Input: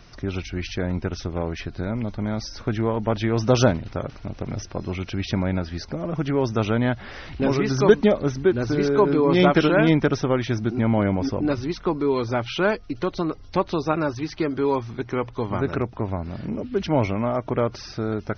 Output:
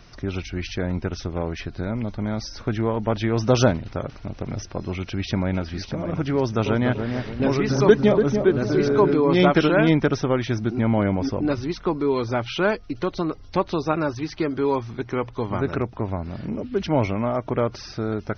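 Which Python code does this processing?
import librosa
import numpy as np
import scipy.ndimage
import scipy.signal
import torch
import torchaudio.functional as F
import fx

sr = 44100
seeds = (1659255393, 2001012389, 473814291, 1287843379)

y = fx.echo_throw(x, sr, start_s=4.93, length_s=0.87, ms=600, feedback_pct=30, wet_db=-10.0)
y = fx.echo_filtered(y, sr, ms=289, feedback_pct=46, hz=1000.0, wet_db=-5, at=(6.37, 9.14))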